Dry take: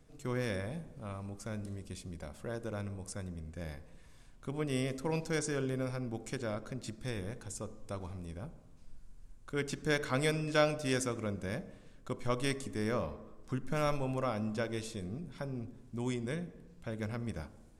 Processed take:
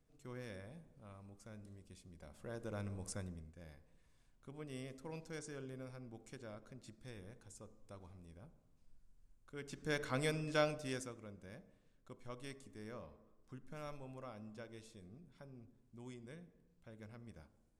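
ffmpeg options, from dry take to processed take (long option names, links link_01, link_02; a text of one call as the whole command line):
ffmpeg -i in.wav -af "volume=6dB,afade=type=in:start_time=2.14:duration=0.97:silence=0.251189,afade=type=out:start_time=3.11:duration=0.43:silence=0.251189,afade=type=in:start_time=9.61:duration=0.4:silence=0.398107,afade=type=out:start_time=10.61:duration=0.58:silence=0.298538" out.wav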